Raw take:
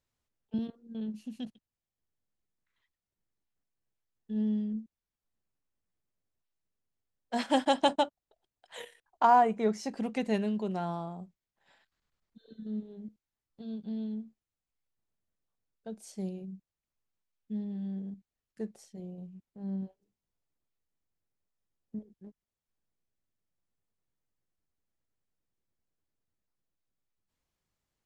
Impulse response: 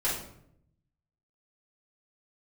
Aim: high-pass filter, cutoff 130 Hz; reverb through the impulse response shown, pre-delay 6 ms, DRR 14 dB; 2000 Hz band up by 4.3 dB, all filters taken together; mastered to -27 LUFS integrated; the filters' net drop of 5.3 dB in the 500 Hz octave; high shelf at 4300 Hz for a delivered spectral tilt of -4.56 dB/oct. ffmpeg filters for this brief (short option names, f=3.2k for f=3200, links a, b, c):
-filter_complex "[0:a]highpass=130,equalizer=f=500:t=o:g=-7.5,equalizer=f=2k:t=o:g=5.5,highshelf=f=4.3k:g=4.5,asplit=2[a][b];[1:a]atrim=start_sample=2205,adelay=6[c];[b][c]afir=irnorm=-1:irlink=0,volume=-22.5dB[d];[a][d]amix=inputs=2:normalize=0,volume=6.5dB"